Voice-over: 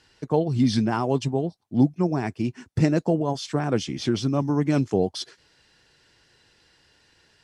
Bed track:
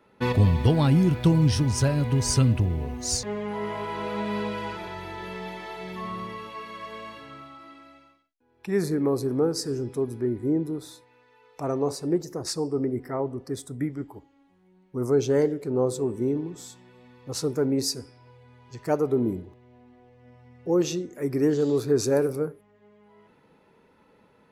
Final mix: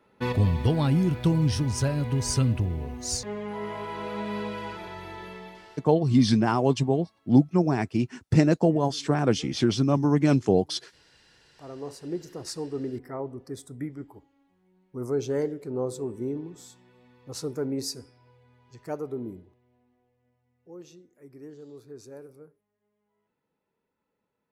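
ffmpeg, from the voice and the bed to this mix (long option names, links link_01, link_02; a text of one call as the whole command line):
ffmpeg -i stem1.wav -i stem2.wav -filter_complex "[0:a]adelay=5550,volume=1dB[link_01];[1:a]volume=17.5dB,afade=type=out:start_time=5.14:duration=0.74:silence=0.0707946,afade=type=in:start_time=11.35:duration=1.06:silence=0.0944061,afade=type=out:start_time=18.01:duration=2.39:silence=0.149624[link_02];[link_01][link_02]amix=inputs=2:normalize=0" out.wav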